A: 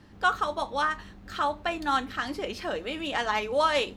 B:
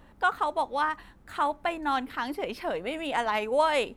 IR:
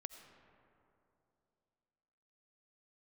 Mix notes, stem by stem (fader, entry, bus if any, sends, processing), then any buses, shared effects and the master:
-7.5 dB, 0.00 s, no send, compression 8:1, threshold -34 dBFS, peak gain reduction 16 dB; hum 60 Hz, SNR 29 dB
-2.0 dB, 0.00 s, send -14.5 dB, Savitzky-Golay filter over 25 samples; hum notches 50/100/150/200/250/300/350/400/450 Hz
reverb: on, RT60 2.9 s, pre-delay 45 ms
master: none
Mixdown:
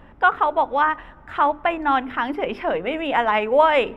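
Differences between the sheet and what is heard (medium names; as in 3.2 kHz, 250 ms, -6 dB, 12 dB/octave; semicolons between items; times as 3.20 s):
stem A -7.5 dB -> -19.5 dB; stem B -2.0 dB -> +7.5 dB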